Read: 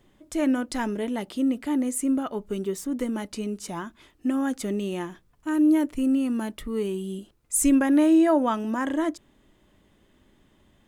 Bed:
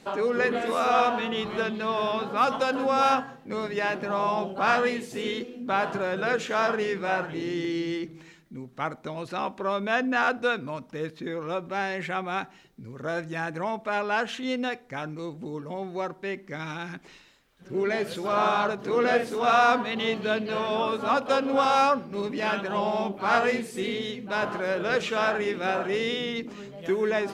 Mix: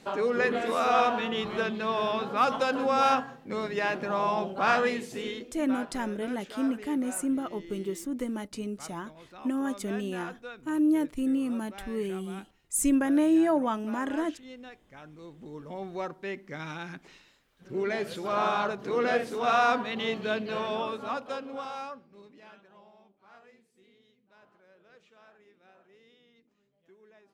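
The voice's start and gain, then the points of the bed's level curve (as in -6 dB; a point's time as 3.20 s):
5.20 s, -4.5 dB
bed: 5.08 s -1.5 dB
5.94 s -17 dB
14.84 s -17 dB
15.84 s -3.5 dB
20.66 s -3.5 dB
23.11 s -33 dB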